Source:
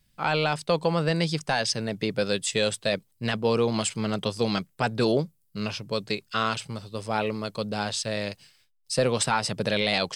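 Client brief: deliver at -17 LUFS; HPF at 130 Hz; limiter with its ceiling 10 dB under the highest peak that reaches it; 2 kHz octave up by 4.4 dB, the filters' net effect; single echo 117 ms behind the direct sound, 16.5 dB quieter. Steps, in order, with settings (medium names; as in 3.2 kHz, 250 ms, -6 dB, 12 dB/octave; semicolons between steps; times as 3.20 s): high-pass 130 Hz; peaking EQ 2 kHz +6 dB; peak limiter -18.5 dBFS; delay 117 ms -16.5 dB; trim +13.5 dB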